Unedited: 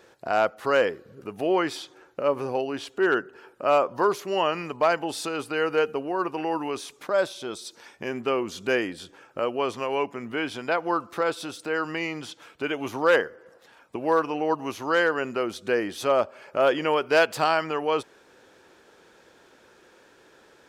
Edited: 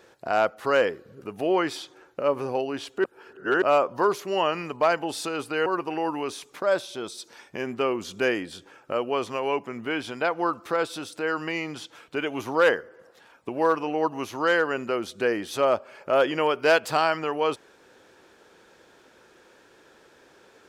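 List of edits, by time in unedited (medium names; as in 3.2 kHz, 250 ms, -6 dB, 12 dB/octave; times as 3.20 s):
3.04–3.62 s: reverse
5.66–6.13 s: delete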